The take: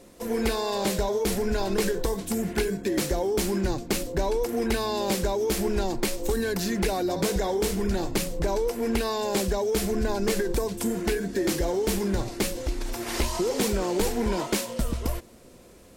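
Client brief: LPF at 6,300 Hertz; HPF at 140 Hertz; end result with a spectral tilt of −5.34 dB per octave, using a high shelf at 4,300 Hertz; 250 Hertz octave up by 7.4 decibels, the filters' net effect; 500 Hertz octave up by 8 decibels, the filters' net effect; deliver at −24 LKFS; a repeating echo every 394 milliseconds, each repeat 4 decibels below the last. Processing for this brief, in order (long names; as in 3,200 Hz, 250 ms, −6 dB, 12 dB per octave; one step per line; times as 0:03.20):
high-pass filter 140 Hz
low-pass filter 6,300 Hz
parametric band 250 Hz +8.5 dB
parametric band 500 Hz +7 dB
high-shelf EQ 4,300 Hz +3 dB
repeating echo 394 ms, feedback 63%, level −4 dB
level −5 dB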